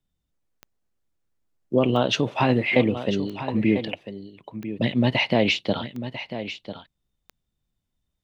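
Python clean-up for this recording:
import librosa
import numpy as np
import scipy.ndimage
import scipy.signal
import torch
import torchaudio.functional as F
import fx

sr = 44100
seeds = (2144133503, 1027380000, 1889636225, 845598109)

y = fx.fix_declick_ar(x, sr, threshold=10.0)
y = fx.fix_echo_inverse(y, sr, delay_ms=996, level_db=-11.5)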